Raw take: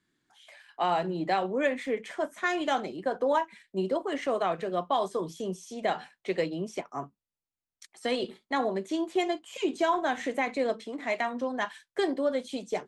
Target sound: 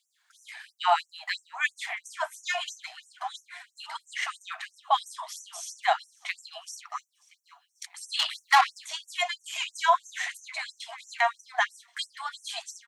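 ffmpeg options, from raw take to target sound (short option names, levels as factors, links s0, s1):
-filter_complex "[0:a]asplit=2[s0][s1];[s1]alimiter=limit=0.0794:level=0:latency=1:release=424,volume=1.41[s2];[s0][s2]amix=inputs=2:normalize=0,aecho=1:1:538|1076|1614|2152:0.0708|0.0411|0.0238|0.0138,asettb=1/sr,asplit=3[s3][s4][s5];[s3]atrim=end=8.194[s6];[s4]atrim=start=8.19:end=8.85,asetpts=PTS-STARTPTS,afade=t=in:d=0.004:c=qsin,afade=t=out:st=0.656:d=0.004:c=qsin,asplit=2[s7][s8];[s8]highpass=f=720:p=1,volume=8.91,asoftclip=type=tanh:threshold=0.251[s9];[s7][s9]amix=inputs=2:normalize=0,lowpass=f=6700:p=1,volume=0.501[s10];[s5]atrim=start=8.846[s11];[s6][s10]acrossfade=d=0.004:c1=hsin:c2=qsin[s12];[s12][s11]acrossfade=d=0.004:c1=qsin:c2=hsin,afftfilt=real='re*gte(b*sr/1024,610*pow(5700/610,0.5+0.5*sin(2*PI*3*pts/sr)))':imag='im*gte(b*sr/1024,610*pow(5700/610,0.5+0.5*sin(2*PI*3*pts/sr)))':win_size=1024:overlap=0.75,volume=1.26"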